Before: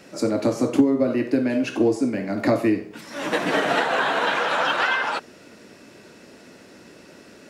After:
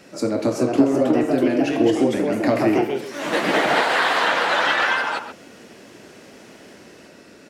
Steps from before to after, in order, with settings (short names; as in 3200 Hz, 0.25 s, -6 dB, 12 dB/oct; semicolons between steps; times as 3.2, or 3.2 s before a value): 3.83–4.28 tilt +1.5 dB/oct; echoes that change speed 0.399 s, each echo +2 st, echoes 2; 0.63–1.28 high shelf 8000 Hz -8.5 dB; speakerphone echo 0.13 s, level -9 dB